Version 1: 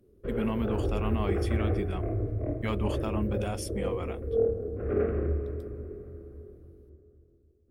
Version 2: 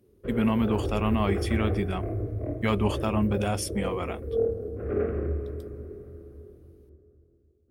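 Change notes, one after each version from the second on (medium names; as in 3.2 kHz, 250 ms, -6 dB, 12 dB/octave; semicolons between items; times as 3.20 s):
speech +6.5 dB; master: add high-pass 45 Hz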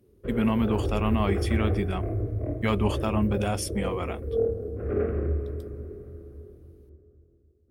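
background: add bass shelf 120 Hz +4 dB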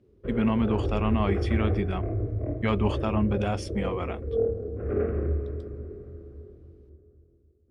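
master: add distance through air 110 m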